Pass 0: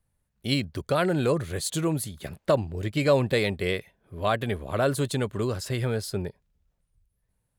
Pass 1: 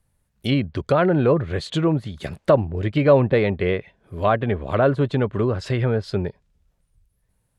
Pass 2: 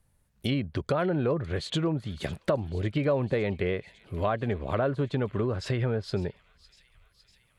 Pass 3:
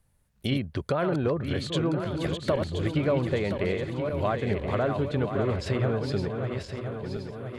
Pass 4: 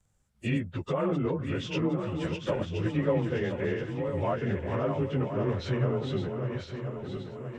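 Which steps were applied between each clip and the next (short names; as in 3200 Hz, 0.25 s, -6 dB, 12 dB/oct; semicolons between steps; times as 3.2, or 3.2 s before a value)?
dynamic EQ 3100 Hz, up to +5 dB, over -42 dBFS, Q 1.1; treble ducked by the level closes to 1400 Hz, closed at -23 dBFS; gain +6.5 dB
compressor 2.5:1, threshold -28 dBFS, peak gain reduction 12.5 dB; thin delay 0.555 s, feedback 70%, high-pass 3000 Hz, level -16 dB
regenerating reverse delay 0.512 s, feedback 69%, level -6 dB
inharmonic rescaling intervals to 92%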